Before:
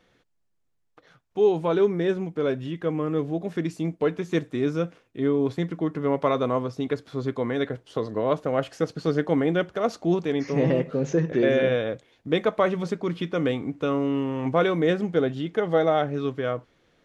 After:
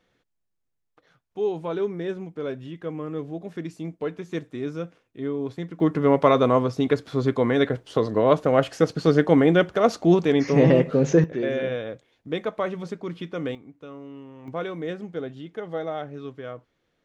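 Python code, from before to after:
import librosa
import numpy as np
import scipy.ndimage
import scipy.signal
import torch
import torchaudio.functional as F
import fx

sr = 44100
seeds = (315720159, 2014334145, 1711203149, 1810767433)

y = fx.gain(x, sr, db=fx.steps((0.0, -5.5), (5.8, 5.5), (11.24, -5.0), (13.55, -16.0), (14.48, -9.0)))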